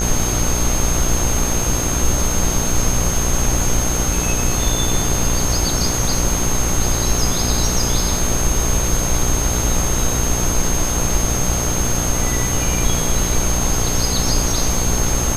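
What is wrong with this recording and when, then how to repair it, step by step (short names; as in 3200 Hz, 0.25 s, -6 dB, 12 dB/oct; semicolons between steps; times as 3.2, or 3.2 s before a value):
buzz 60 Hz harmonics 25 -23 dBFS
tone 6400 Hz -22 dBFS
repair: de-hum 60 Hz, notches 25; notch 6400 Hz, Q 30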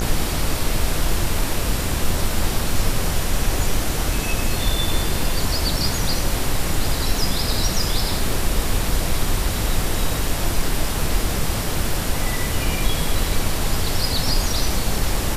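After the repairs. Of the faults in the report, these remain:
none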